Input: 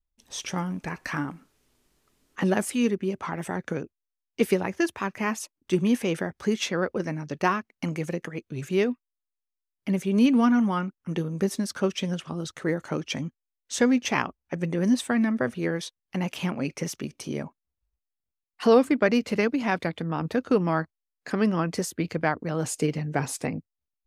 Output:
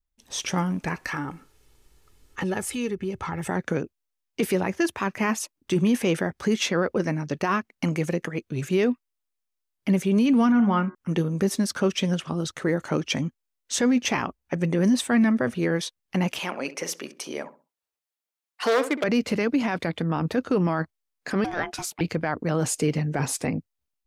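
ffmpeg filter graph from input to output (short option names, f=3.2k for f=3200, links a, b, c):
-filter_complex "[0:a]asettb=1/sr,asplit=3[a][b][c];[a]atrim=end=1.054[d];[b]atrim=start=1.05:end=3.48,asetpts=PTS-STARTPTS,afade=t=in:d=0.004:c=qsin,afade=t=out:st=2.426:d=0.004:c=qsin,aecho=1:1:2.3:0.45,atrim=end_sample=107163,asubboost=boost=5.5:cutoff=170,acompressor=threshold=-34dB:ratio=2:attack=3.2:release=140:knee=1:detection=peak[e];[c]atrim=start=3.476[f];[d][e]acrossfade=d=0.004:c1=hsin:c2=qsin[g];[g][f]acrossfade=d=0.004:c1=qsin:c2=hsin,asettb=1/sr,asplit=3[h][i][j];[h]atrim=end=10.524[k];[i]atrim=start=10.52:end=10.95,asetpts=PTS-STARTPTS,afade=t=in:d=0.004:c=qsin,afade=t=out:st=0.426:d=0.004:c=qsin,lowpass=3.1k,bandreject=f=72.94:t=h:w=4,bandreject=f=145.88:t=h:w=4,bandreject=f=218.82:t=h:w=4,bandreject=f=291.76:t=h:w=4,bandreject=f=364.7:t=h:w=4,bandreject=f=437.64:t=h:w=4,bandreject=f=510.58:t=h:w=4,bandreject=f=583.52:t=h:w=4,bandreject=f=656.46:t=h:w=4,bandreject=f=729.4:t=h:w=4,bandreject=f=802.34:t=h:w=4,bandreject=f=875.28:t=h:w=4,bandreject=f=948.22:t=h:w=4,bandreject=f=1.02116k:t=h:w=4,bandreject=f=1.0941k:t=h:w=4,bandreject=f=1.16704k:t=h:w=4,bandreject=f=1.23998k:t=h:w=4,bandreject=f=1.31292k:t=h:w=4,bandreject=f=1.38586k:t=h:w=4,bandreject=f=1.4588k:t=h:w=4,bandreject=f=1.53174k:t=h:w=4,bandreject=f=1.60468k:t=h:w=4,bandreject=f=1.67762k:t=h:w=4,bandreject=f=1.75056k:t=h:w=4,bandreject=f=1.8235k:t=h:w=4,bandreject=f=1.89644k:t=h:w=4,bandreject=f=1.96938k:t=h:w=4,bandreject=f=2.04232k:t=h:w=4,bandreject=f=2.11526k:t=h:w=4[l];[j]atrim=start=10.946[m];[k][l]acrossfade=d=0.004:c1=hsin:c2=qsin[n];[n][m]acrossfade=d=0.004:c1=qsin:c2=hsin,asettb=1/sr,asplit=3[o][p][q];[o]atrim=end=16.394[r];[p]atrim=start=16.39:end=19.04,asetpts=PTS-STARTPTS,afade=t=in:d=0.004:c=qsin,afade=t=out:st=2.646:d=0.004:c=qsin,aeval=exprs='0.211*(abs(mod(val(0)/0.211+3,4)-2)-1)':c=same,highpass=460,asplit=2[s][t];[t]adelay=65,lowpass=f=1.1k:p=1,volume=-12dB,asplit=2[u][v];[v]adelay=65,lowpass=f=1.1k:p=1,volume=0.31,asplit=2[w][x];[x]adelay=65,lowpass=f=1.1k:p=1,volume=0.31[y];[s][u][w][y]amix=inputs=4:normalize=0,atrim=end_sample=116865[z];[q]atrim=start=19.036[aa];[r][z]acrossfade=d=0.004:c1=hsin:c2=qsin[ab];[ab][aa]acrossfade=d=0.004:c1=qsin:c2=hsin,asettb=1/sr,asplit=3[ac][ad][ae];[ac]atrim=end=21.444[af];[ad]atrim=start=21.44:end=22.01,asetpts=PTS-STARTPTS,afade=t=in:d=0.004:c=qsin,afade=t=out:st=0.566:d=0.004:c=qsin,lowshelf=f=690:t=q:w=1.5:g=-9,aeval=exprs='val(0)*sin(2*PI*530*n/s)':c=same[ag];[ae]atrim=start=22.006[ah];[af][ag]acrossfade=d=0.004:c1=hsin:c2=qsin[ai];[ai][ah]acrossfade=d=0.004:c1=qsin:c2=hsin,alimiter=limit=-18.5dB:level=0:latency=1:release=13,dynaudnorm=f=160:g=3:m=4.5dB"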